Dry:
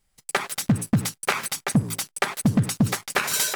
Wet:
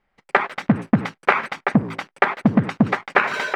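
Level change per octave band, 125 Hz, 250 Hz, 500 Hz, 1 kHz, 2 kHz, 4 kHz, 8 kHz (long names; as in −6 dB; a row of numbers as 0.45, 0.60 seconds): −0.5 dB, +4.5 dB, +7.5 dB, +8.5 dB, +7.0 dB, −5.5 dB, below −20 dB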